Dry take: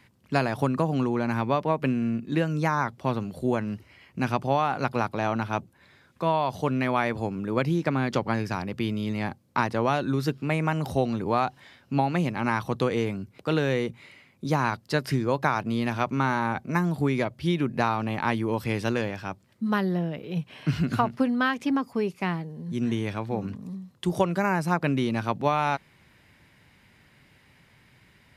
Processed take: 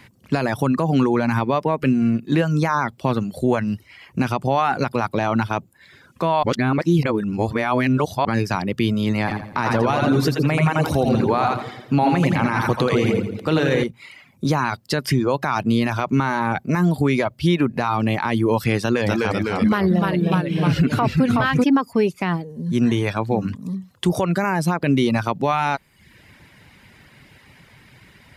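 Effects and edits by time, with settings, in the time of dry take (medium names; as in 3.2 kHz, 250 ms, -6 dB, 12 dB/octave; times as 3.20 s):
6.43–8.25 s: reverse
9.19–13.84 s: two-band feedback delay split 490 Hz, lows 112 ms, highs 83 ms, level -3.5 dB
18.82–21.64 s: ever faster or slower copies 244 ms, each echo -1 st, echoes 3
whole clip: reverb removal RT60 0.59 s; loudness maximiser +18.5 dB; trim -8 dB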